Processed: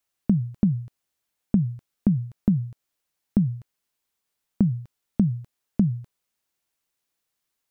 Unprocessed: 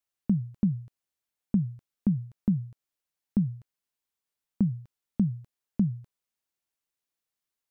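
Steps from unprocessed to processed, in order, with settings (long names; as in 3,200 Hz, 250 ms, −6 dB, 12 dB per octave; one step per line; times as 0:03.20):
downward compressor, threshold −23 dBFS, peak gain reduction 4 dB
level +7.5 dB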